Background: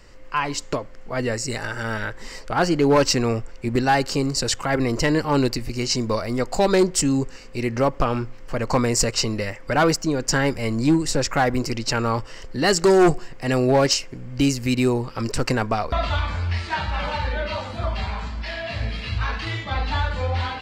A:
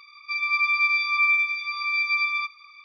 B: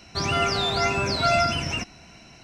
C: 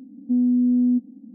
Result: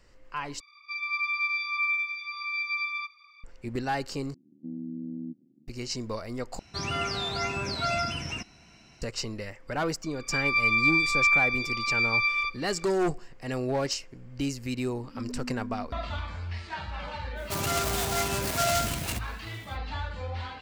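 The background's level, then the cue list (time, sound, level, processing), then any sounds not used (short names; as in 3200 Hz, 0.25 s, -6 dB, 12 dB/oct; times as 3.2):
background -11 dB
0.6 replace with A -7 dB
4.34 replace with C -14.5 dB + AM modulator 75 Hz, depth 80%
6.59 replace with B -6.5 dB + bell 620 Hz -3 dB 0.98 oct
10.03 add A -1.5 dB
14.86 add C -8.5 dB + limiter -26 dBFS
17.35 add B -5 dB, fades 0.05 s + noise-modulated delay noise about 4800 Hz, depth 0.075 ms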